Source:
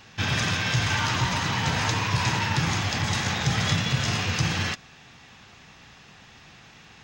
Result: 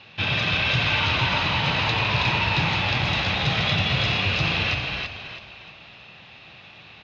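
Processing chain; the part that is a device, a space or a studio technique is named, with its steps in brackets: frequency-shifting delay pedal into a guitar cabinet (frequency-shifting echo 0.322 s, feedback 37%, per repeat -36 Hz, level -3.5 dB; speaker cabinet 80–4200 Hz, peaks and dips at 240 Hz -4 dB, 590 Hz +5 dB, 1700 Hz -4 dB, 2600 Hz +8 dB, 3900 Hz +6 dB)

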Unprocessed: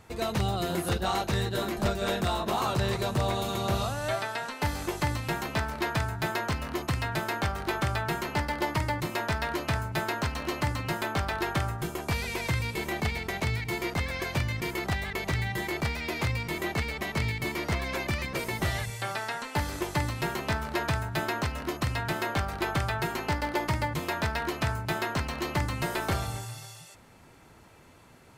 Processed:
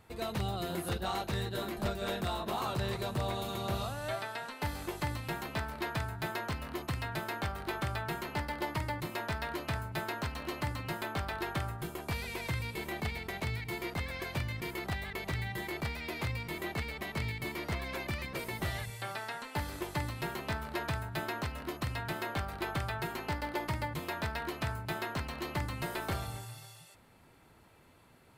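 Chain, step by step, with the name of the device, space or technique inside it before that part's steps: exciter from parts (in parallel at -5 dB: HPF 4100 Hz 24 dB/oct + soft clip -39 dBFS, distortion -12 dB + HPF 4900 Hz 12 dB/oct); on the sum: gain -6.5 dB

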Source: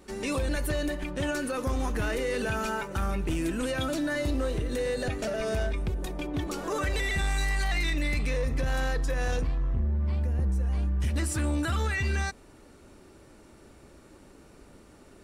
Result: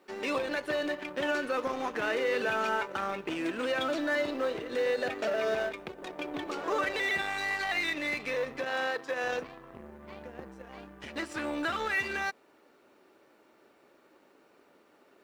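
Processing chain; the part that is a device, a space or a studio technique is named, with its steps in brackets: phone line with mismatched companding (BPF 390–3500 Hz; G.711 law mismatch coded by A); 8.61–9.24 HPF 190 Hz 12 dB/oct; gain +4 dB

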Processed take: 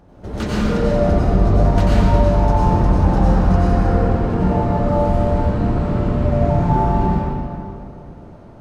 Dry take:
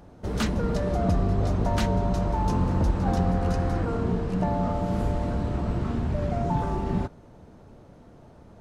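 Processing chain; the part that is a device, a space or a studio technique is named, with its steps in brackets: swimming-pool hall (reverb RT60 2.7 s, pre-delay 85 ms, DRR -8 dB; high shelf 4200 Hz -6 dB)

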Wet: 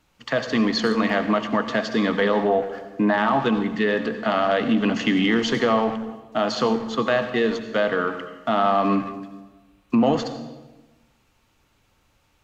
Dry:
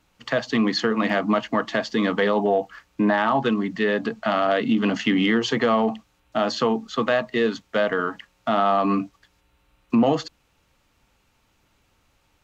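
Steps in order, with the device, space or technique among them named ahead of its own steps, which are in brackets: saturated reverb return (on a send at -7 dB: reverb RT60 1.1 s, pre-delay 68 ms + soft clip -18 dBFS, distortion -12 dB)

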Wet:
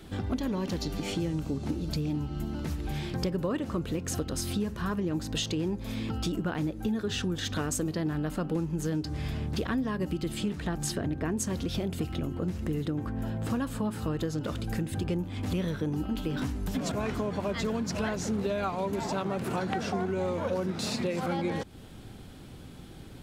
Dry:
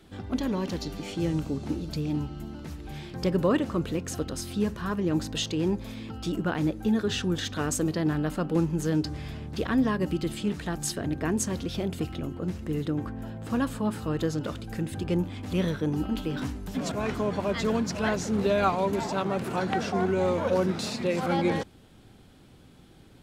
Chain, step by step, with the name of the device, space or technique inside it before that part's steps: 10.55–11.39 high shelf 4700 Hz -7.5 dB; ASMR close-microphone chain (low shelf 160 Hz +3.5 dB; compressor 5:1, threshold -34 dBFS, peak gain reduction 14 dB; high shelf 10000 Hz +3.5 dB); gain +5.5 dB

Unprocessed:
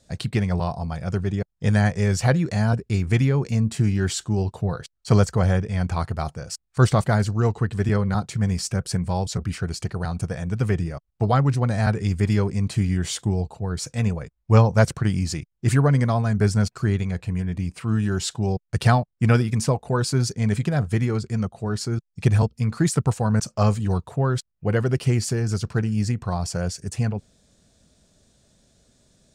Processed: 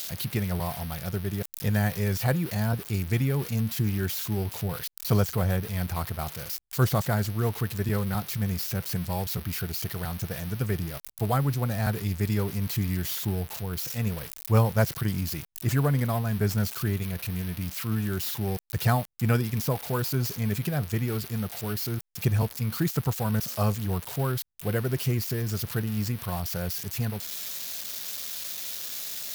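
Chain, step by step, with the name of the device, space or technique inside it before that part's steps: budget class-D amplifier (switching dead time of 0.066 ms; switching spikes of -14.5 dBFS); gain -6 dB

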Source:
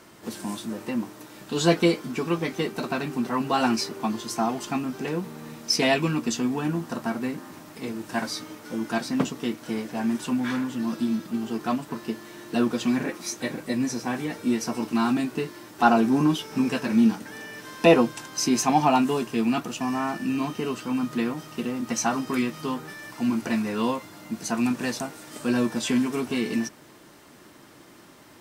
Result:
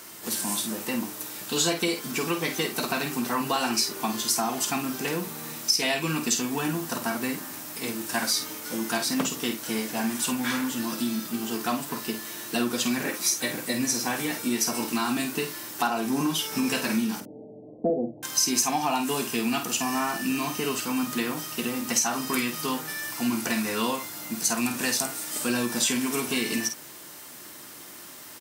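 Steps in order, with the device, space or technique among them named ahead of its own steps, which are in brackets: 17.2–18.23 steep low-pass 720 Hz 72 dB/oct; tilt +2.5 dB/oct; ASMR close-microphone chain (low shelf 130 Hz +4.5 dB; compressor 6:1, threshold -25 dBFS, peak gain reduction 12 dB; high shelf 9000 Hz +8 dB); doubler 50 ms -8 dB; gain +2 dB

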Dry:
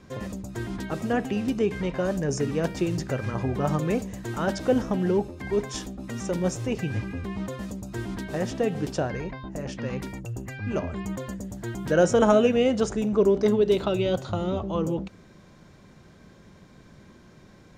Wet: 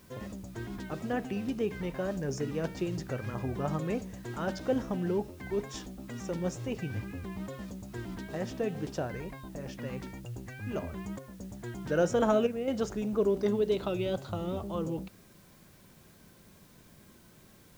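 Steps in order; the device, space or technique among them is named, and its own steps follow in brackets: worn cassette (LPF 7300 Hz; wow and flutter; level dips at 11.19/12.47, 0.204 s -6 dB; white noise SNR 29 dB); gain -7 dB

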